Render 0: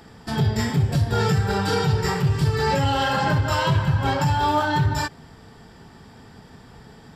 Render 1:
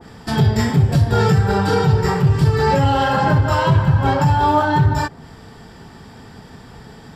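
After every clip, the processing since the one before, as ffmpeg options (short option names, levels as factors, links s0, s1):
-af "adynamicequalizer=threshold=0.0112:dfrequency=1700:dqfactor=0.7:tfrequency=1700:tqfactor=0.7:attack=5:release=100:ratio=0.375:range=4:mode=cutabove:tftype=highshelf,volume=2"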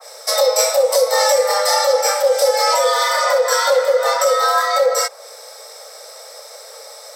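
-af "aexciter=amount=3.9:drive=8.6:freq=3600,afreqshift=410,volume=0.891"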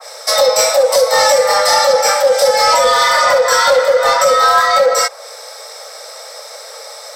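-filter_complex "[0:a]asplit=2[s0][s1];[s1]highpass=f=720:p=1,volume=3.55,asoftclip=type=tanh:threshold=0.841[s2];[s0][s2]amix=inputs=2:normalize=0,lowpass=f=5200:p=1,volume=0.501,volume=1.19"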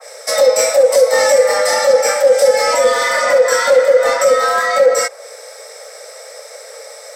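-af "equalizer=f=125:t=o:w=1:g=-7,equalizer=f=250:t=o:w=1:g=11,equalizer=f=500:t=o:w=1:g=7,equalizer=f=1000:t=o:w=1:g=-5,equalizer=f=2000:t=o:w=1:g=7,equalizer=f=4000:t=o:w=1:g=-5,equalizer=f=8000:t=o:w=1:g=6,volume=0.501"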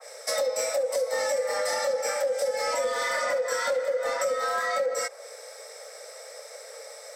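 -af "acompressor=threshold=0.178:ratio=6,volume=0.355"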